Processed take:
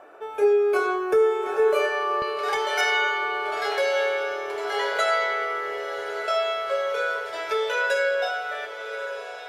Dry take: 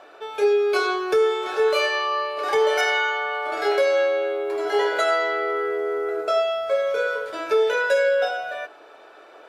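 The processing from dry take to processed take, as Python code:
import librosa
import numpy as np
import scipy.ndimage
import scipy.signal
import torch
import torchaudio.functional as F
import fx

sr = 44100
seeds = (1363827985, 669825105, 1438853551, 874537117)

y = fx.peak_eq(x, sr, hz=fx.steps((0.0, 4100.0), (2.22, 290.0)), db=-15.0, octaves=1.2)
y = fx.echo_diffused(y, sr, ms=1208, feedback_pct=61, wet_db=-11)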